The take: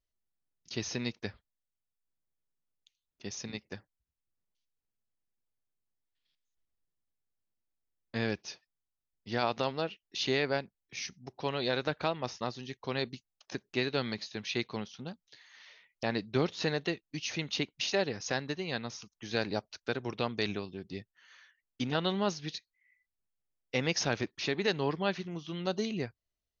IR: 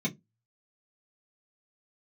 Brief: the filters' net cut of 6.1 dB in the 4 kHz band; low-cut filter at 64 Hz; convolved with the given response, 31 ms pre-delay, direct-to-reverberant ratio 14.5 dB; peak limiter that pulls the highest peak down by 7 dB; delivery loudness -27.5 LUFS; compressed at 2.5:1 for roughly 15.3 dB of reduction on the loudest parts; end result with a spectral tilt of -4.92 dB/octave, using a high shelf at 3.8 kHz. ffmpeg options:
-filter_complex "[0:a]highpass=64,highshelf=f=3800:g=-5,equalizer=f=4000:t=o:g=-4.5,acompressor=threshold=0.00355:ratio=2.5,alimiter=level_in=3.76:limit=0.0631:level=0:latency=1,volume=0.266,asplit=2[s0][s1];[1:a]atrim=start_sample=2205,adelay=31[s2];[s1][s2]afir=irnorm=-1:irlink=0,volume=0.1[s3];[s0][s3]amix=inputs=2:normalize=0,volume=12.6"

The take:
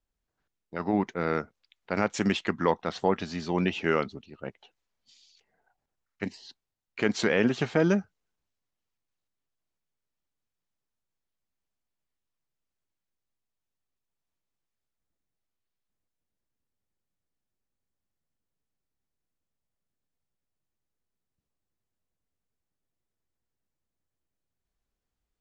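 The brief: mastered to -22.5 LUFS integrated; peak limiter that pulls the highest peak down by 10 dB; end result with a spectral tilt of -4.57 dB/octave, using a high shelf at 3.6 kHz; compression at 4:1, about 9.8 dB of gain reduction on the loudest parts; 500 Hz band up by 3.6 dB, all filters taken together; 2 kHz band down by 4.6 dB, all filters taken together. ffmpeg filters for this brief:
-af "equalizer=f=500:t=o:g=4.5,equalizer=f=2000:t=o:g=-8.5,highshelf=f=3600:g=8,acompressor=threshold=0.0355:ratio=4,volume=5.96,alimiter=limit=0.335:level=0:latency=1"

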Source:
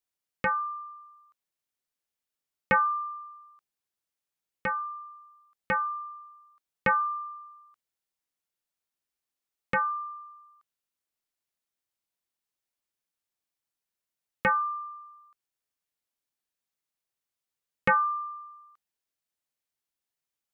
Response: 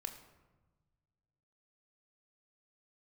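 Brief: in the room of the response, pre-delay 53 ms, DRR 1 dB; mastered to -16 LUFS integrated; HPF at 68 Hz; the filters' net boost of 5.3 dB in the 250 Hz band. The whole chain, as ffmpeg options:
-filter_complex "[0:a]highpass=68,equalizer=f=250:t=o:g=7.5,asplit=2[s0][s1];[1:a]atrim=start_sample=2205,adelay=53[s2];[s1][s2]afir=irnorm=-1:irlink=0,volume=1.12[s3];[s0][s3]amix=inputs=2:normalize=0,volume=2.82"

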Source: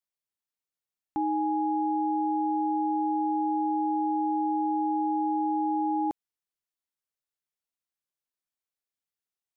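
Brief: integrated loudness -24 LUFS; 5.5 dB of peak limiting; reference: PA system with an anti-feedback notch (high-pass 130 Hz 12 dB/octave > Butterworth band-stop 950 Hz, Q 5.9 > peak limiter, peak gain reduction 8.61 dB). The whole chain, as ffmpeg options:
-af "alimiter=level_in=1.33:limit=0.0631:level=0:latency=1,volume=0.75,highpass=130,asuperstop=centerf=950:order=8:qfactor=5.9,volume=7.5,alimiter=limit=0.133:level=0:latency=1"

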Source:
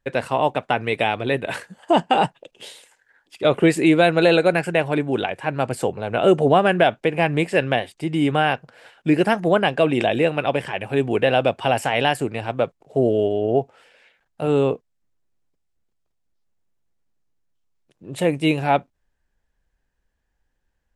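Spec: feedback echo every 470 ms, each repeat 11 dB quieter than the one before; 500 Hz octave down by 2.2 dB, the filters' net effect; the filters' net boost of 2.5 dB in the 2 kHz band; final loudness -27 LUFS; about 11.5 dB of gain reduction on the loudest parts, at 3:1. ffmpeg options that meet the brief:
-af "equalizer=f=500:t=o:g=-3,equalizer=f=2000:t=o:g=3.5,acompressor=threshold=0.0398:ratio=3,aecho=1:1:470|940|1410:0.282|0.0789|0.0221,volume=1.5"

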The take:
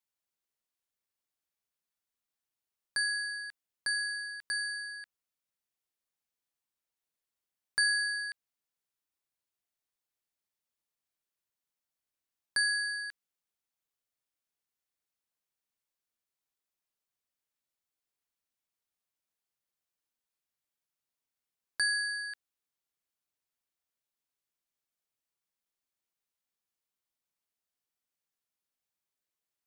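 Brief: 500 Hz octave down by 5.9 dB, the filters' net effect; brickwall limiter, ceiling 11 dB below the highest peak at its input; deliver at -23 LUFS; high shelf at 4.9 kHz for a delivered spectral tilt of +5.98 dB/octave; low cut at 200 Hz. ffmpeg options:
-af "highpass=200,equalizer=f=500:t=o:g=-7.5,highshelf=f=4900:g=-7.5,volume=5.96,alimiter=limit=0.158:level=0:latency=1"

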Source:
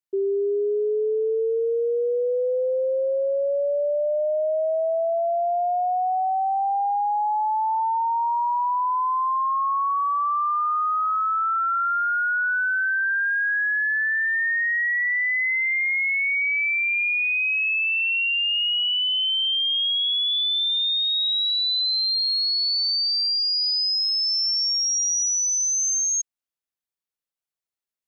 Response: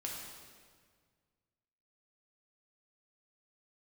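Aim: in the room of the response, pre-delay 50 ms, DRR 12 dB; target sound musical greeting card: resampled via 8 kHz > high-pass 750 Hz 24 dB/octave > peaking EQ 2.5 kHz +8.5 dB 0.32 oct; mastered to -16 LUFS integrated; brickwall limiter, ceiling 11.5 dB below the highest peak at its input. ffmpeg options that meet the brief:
-filter_complex "[0:a]alimiter=level_in=2.37:limit=0.0631:level=0:latency=1,volume=0.422,asplit=2[s0][s1];[1:a]atrim=start_sample=2205,adelay=50[s2];[s1][s2]afir=irnorm=-1:irlink=0,volume=0.251[s3];[s0][s3]amix=inputs=2:normalize=0,aresample=8000,aresample=44100,highpass=f=750:w=0.5412,highpass=f=750:w=1.3066,equalizer=f=2500:t=o:w=0.32:g=8.5,volume=5.01"

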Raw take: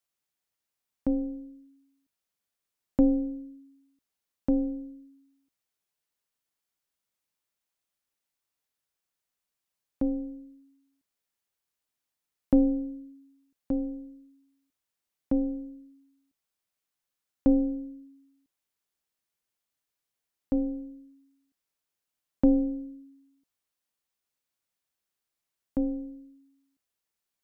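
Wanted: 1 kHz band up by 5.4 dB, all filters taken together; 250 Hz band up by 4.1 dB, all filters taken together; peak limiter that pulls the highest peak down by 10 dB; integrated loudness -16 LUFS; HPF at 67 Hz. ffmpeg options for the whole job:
-af "highpass=67,equalizer=f=250:t=o:g=4,equalizer=f=1000:t=o:g=7.5,volume=4.22,alimiter=limit=0.596:level=0:latency=1"

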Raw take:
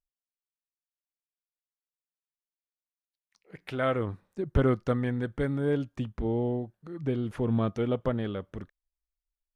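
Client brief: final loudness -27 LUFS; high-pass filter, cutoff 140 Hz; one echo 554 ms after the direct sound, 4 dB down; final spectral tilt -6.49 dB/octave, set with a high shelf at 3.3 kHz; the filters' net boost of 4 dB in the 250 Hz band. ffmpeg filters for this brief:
-af "highpass=140,equalizer=f=250:t=o:g=5,highshelf=f=3300:g=-5.5,aecho=1:1:554:0.631,volume=1.06"

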